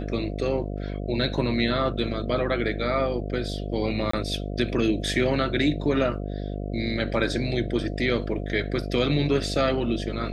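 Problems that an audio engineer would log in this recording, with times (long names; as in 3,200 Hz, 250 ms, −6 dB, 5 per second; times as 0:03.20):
mains buzz 50 Hz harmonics 14 −31 dBFS
0:04.11–0:04.13: drop-out 24 ms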